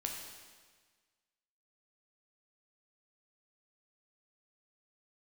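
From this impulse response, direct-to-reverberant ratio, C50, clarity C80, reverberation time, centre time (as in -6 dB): 0.5 dB, 3.0 dB, 4.5 dB, 1.5 s, 57 ms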